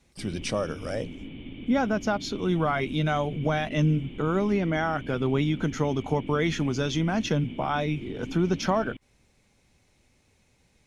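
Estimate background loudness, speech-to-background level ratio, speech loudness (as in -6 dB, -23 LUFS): -41.0 LUFS, 13.5 dB, -27.5 LUFS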